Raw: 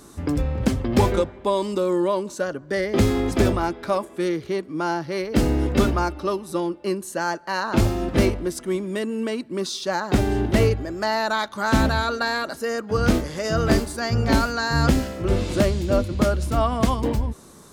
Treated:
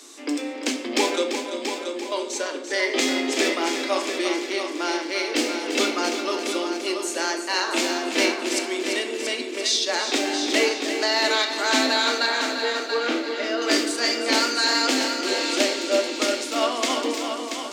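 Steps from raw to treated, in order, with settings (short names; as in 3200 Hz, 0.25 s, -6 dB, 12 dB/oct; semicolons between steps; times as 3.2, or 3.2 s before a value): steep high-pass 250 Hz 96 dB/oct; band shelf 4000 Hz +11.5 dB 2.3 oct; 1.32–2.12 compressor 3:1, threshold -37 dBFS, peak gain reduction 14.5 dB; 12.26–13.62 air absorption 270 m; multi-head echo 0.341 s, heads first and second, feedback 45%, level -9 dB; shoebox room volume 300 m³, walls mixed, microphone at 0.57 m; gain -3.5 dB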